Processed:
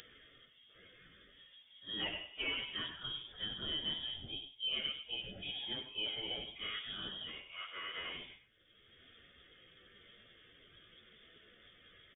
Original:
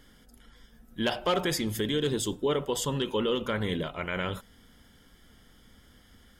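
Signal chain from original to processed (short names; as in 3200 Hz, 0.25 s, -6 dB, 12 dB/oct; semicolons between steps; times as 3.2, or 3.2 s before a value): HPF 250 Hz 6 dB/oct; upward compressor, threshold -38 dBFS; plain phase-vocoder stretch 1.9×; echo 97 ms -10.5 dB; inverted band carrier 3500 Hz; gain -9 dB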